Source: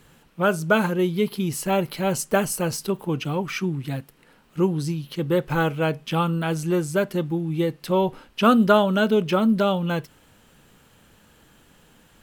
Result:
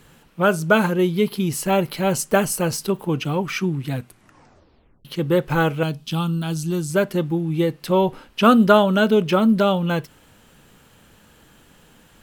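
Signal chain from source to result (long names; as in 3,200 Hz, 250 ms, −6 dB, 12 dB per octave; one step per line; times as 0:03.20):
0:03.92: tape stop 1.13 s
0:05.83–0:06.90: graphic EQ with 10 bands 500 Hz −11 dB, 1,000 Hz −4 dB, 2,000 Hz −12 dB, 4,000 Hz +5 dB
level +3 dB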